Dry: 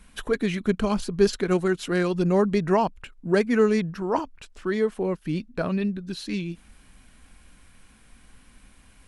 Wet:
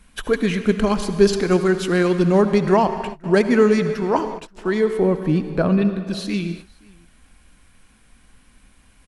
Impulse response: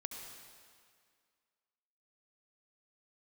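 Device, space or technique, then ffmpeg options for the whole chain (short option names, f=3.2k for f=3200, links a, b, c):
keyed gated reverb: -filter_complex "[0:a]asettb=1/sr,asplit=3[a][b][c];[a]atrim=end=4.994[d];[b]atrim=start=4.99:end=5.82,asetpts=PTS-STARTPTS,afade=t=in:d=0.004:c=qsin,afade=t=out:st=0.826:d=0.004:c=qsin,tiltshelf=f=1.3k:g=4[e];[c]atrim=start=5.816[f];[d][e]acrossfade=d=0.004:c1=hsin:c2=qsin[g];[g][f]acrossfade=d=0.004:c1=qsin:c2=hsin,aecho=1:1:528:0.0794,asplit=3[h][i][j];[1:a]atrim=start_sample=2205[k];[i][k]afir=irnorm=-1:irlink=0[l];[j]apad=whole_len=423302[m];[l][m]sidechaingate=range=-33dB:threshold=-41dB:ratio=16:detection=peak,volume=1.5dB[n];[h][n]amix=inputs=2:normalize=0"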